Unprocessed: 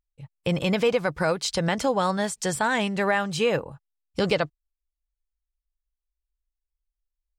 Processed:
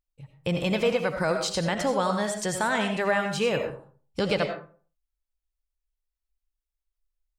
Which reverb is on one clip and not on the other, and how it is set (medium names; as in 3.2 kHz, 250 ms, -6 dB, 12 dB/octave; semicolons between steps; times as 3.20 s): algorithmic reverb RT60 0.43 s, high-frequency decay 0.55×, pre-delay 45 ms, DRR 5 dB; trim -2.5 dB